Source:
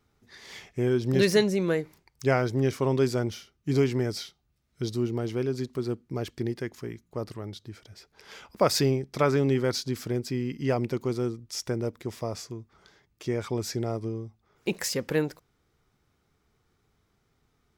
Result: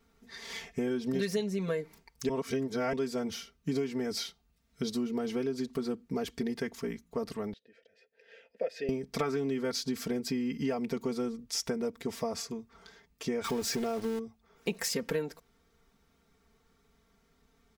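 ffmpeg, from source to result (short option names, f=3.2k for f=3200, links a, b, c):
-filter_complex "[0:a]asettb=1/sr,asplit=3[a][b][c];[a]atrim=end=7.534[d];[b]atrim=start=7.53:end=8.89,asetpts=PTS-STARTPTS,afade=t=in:d=0.004:c=qsin,afade=t=out:st=1.356:d=0.004:c=qsin,asplit=3[e][f][g];[e]bandpass=f=530:t=q:w=8,volume=0dB[h];[f]bandpass=f=1.84k:t=q:w=8,volume=-6dB[i];[g]bandpass=f=2.48k:t=q:w=8,volume=-9dB[j];[h][i][j]amix=inputs=3:normalize=0[k];[c]atrim=start=8.886[l];[d][k]acrossfade=d=0.004:c1=hsin:c2=qsin[m];[m][l]acrossfade=d=0.004:c1=qsin:c2=hsin,asettb=1/sr,asplit=3[n][o][p];[n]atrim=end=13.444[q];[o]atrim=start=13.44:end=14.19,asetpts=PTS-STARTPTS,afade=t=in:d=0.004:c=qsin,afade=t=out:st=0.746:d=0.004:c=qsin,aeval=exprs='val(0)+0.5*0.0178*sgn(val(0))':c=same[r];[p]atrim=start=14.186[s];[q][r]acrossfade=d=0.004:c1=hsin:c2=qsin[t];[t][s]acrossfade=d=0.004:c1=qsin:c2=hsin,asplit=3[u][v][w];[u]atrim=end=2.292[x];[v]atrim=start=2.288:end=2.932,asetpts=PTS-STARTPTS,areverse[y];[w]atrim=start=2.928[z];[x][y]acrossfade=d=0.004:c1=hsin:c2=hsin[aa];[aa][z]acrossfade=d=0.004:c1=hsin:c2=hsin,aecho=1:1:4.4:0.98,acompressor=threshold=-29dB:ratio=6"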